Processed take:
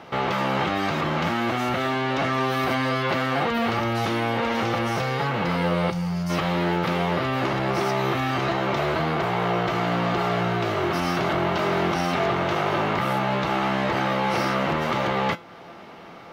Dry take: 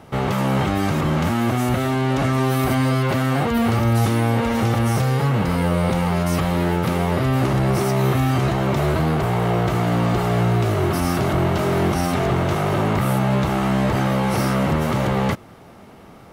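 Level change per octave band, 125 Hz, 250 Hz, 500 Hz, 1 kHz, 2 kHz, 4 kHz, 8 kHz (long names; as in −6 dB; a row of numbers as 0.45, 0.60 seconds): −9.5, −6.0, −2.5, 0.0, +1.0, +1.0, −8.5 decibels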